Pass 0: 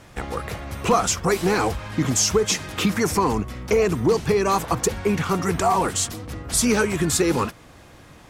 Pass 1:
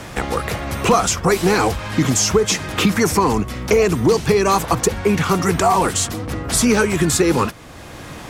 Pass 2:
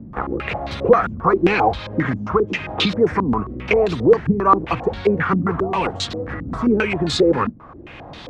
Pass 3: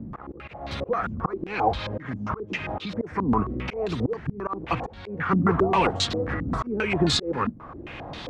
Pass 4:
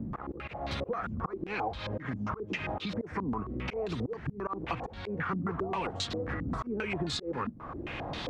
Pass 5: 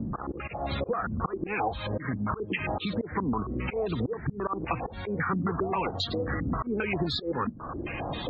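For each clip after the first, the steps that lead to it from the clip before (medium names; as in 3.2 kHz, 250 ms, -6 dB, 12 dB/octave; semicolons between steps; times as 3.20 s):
three bands compressed up and down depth 40%; trim +4.5 dB
step-sequenced low-pass 7.5 Hz 230–3900 Hz; trim -5 dB
slow attack 411 ms
compression 6:1, threshold -31 dBFS, peak gain reduction 14 dB
loudest bins only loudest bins 64; trim +4.5 dB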